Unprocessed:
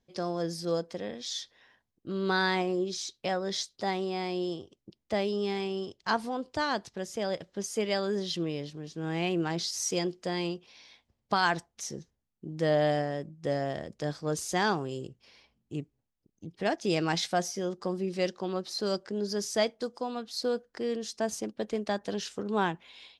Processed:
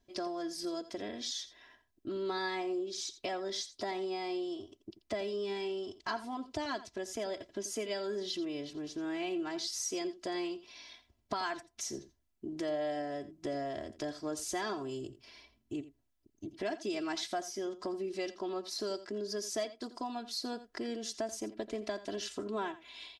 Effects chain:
comb filter 3 ms, depth 90%
downward compressor 3 to 1, threshold −37 dBFS, peak gain reduction 14 dB
single-tap delay 85 ms −15 dB

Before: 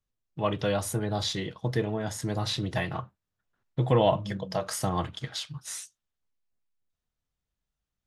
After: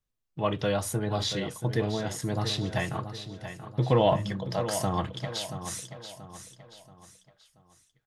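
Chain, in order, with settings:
on a send: repeating echo 681 ms, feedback 40%, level −10.5 dB
0:04.05–0:04.58: on the sum: transient designer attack −3 dB, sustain +4 dB

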